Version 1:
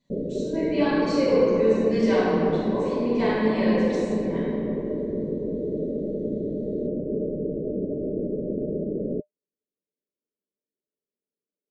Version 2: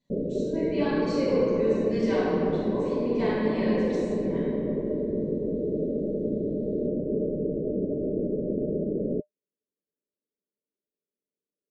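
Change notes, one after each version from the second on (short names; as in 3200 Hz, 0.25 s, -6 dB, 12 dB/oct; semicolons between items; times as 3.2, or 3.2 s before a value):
speech -5.0 dB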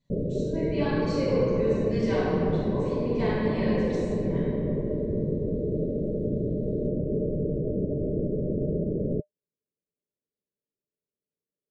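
master: add resonant low shelf 170 Hz +8.5 dB, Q 1.5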